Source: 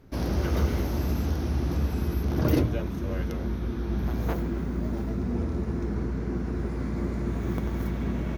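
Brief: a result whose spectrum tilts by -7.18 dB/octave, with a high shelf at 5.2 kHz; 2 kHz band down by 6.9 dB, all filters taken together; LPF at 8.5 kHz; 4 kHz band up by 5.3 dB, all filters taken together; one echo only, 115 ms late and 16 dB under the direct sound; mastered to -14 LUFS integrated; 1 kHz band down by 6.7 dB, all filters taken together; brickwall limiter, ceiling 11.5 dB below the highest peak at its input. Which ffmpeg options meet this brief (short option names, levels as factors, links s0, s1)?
-af "lowpass=8500,equalizer=f=1000:t=o:g=-7.5,equalizer=f=2000:t=o:g=-9,equalizer=f=4000:t=o:g=7.5,highshelf=f=5200:g=5,alimiter=limit=0.075:level=0:latency=1,aecho=1:1:115:0.158,volume=7.5"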